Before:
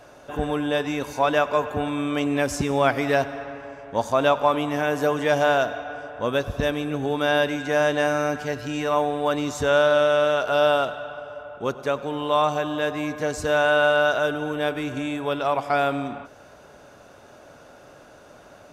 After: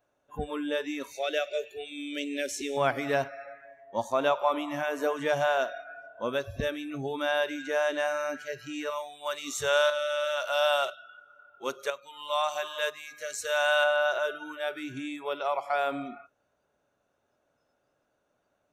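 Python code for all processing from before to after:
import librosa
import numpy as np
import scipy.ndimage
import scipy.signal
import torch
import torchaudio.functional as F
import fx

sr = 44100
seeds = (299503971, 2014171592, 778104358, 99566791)

y = fx.chain(x, sr, fx.peak_eq(hz=3700.0, db=5.5, octaves=1.8),
    fx.fixed_phaser(hz=420.0, stages=4), at=(1.14, 2.77))
y = fx.chain(y, sr, fx.high_shelf(hz=2300.0, db=10.5),
    fx.hum_notches(base_hz=60, count=7),
    fx.tremolo_shape(shape='saw_up', hz=1.0, depth_pct=60), at=(8.9, 13.84))
y = fx.hum_notches(y, sr, base_hz=50, count=3)
y = fx.noise_reduce_blind(y, sr, reduce_db=21)
y = fx.notch(y, sr, hz=4900.0, q=7.3)
y = F.gain(torch.from_numpy(y), -6.0).numpy()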